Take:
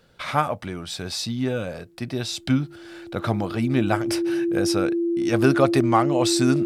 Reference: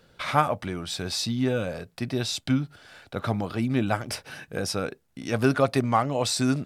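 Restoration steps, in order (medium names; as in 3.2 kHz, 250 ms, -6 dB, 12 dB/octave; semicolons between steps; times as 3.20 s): band-stop 340 Hz, Q 30; gain correction -3 dB, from 2.39 s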